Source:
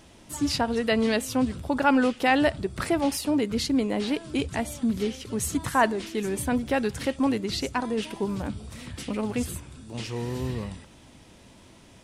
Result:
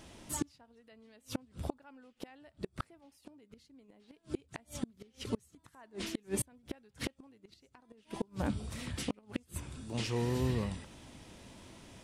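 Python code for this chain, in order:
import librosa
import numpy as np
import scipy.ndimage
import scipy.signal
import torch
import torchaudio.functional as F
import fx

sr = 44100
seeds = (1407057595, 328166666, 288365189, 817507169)

y = fx.gate_flip(x, sr, shuts_db=-20.0, range_db=-34)
y = y * librosa.db_to_amplitude(-1.5)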